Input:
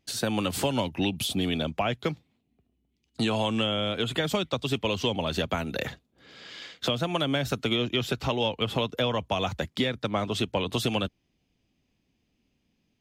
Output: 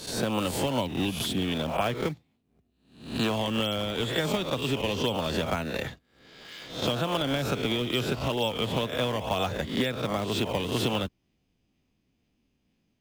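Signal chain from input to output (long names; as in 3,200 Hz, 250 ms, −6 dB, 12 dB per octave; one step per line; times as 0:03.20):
peak hold with a rise ahead of every peak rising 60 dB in 0.53 s
in parallel at −7.5 dB: sample-and-hold swept by an LFO 19×, swing 160% 2.1 Hz
on the sum: level −4.5 dB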